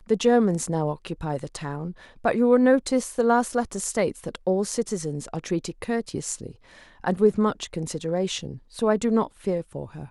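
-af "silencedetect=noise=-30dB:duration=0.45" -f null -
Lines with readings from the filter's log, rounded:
silence_start: 6.49
silence_end: 7.04 | silence_duration: 0.56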